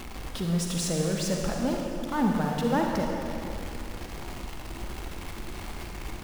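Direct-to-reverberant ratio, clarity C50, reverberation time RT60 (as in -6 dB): 0.0 dB, 0.5 dB, 2.8 s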